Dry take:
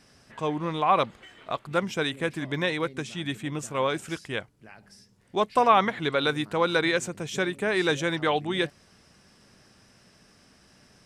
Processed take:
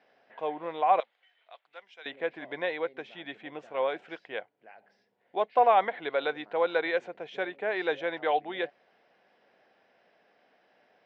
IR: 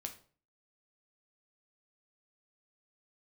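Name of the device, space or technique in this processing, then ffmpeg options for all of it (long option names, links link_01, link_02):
phone earpiece: -filter_complex "[0:a]highpass=460,equalizer=frequency=500:width_type=q:width=4:gain=5,equalizer=frequency=720:width_type=q:width=4:gain=8,equalizer=frequency=1200:width_type=q:width=4:gain=-7,equalizer=frequency=2700:width_type=q:width=4:gain=-3,lowpass=frequency=3100:width=0.5412,lowpass=frequency=3100:width=1.3066,asettb=1/sr,asplit=3[link_01][link_02][link_03];[link_01]atrim=end=1.004[link_04];[link_02]atrim=start=1:end=2.06,asetpts=PTS-STARTPTS,afade=type=in:duration=0.004:curve=qsin,afade=type=out:start_time=1.056:duration=0.004:curve=qsin,aderivative[link_05];[link_03]atrim=start=2.056[link_06];[link_04][link_05]acrossfade=duration=0.004:curve1=hsin:curve2=qsin[link_07];[link_07][link_06]acrossfade=duration=0.004:curve1=qsin:curve2=hsin,volume=-4dB"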